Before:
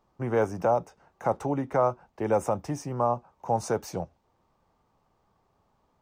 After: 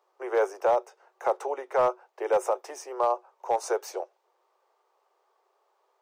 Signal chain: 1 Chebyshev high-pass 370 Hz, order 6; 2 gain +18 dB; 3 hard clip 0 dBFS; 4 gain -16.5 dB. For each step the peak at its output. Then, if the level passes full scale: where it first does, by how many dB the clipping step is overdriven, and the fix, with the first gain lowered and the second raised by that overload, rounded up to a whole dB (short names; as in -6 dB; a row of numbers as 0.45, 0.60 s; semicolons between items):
-14.0, +4.0, 0.0, -16.5 dBFS; step 2, 4.0 dB; step 2 +14 dB, step 4 -12.5 dB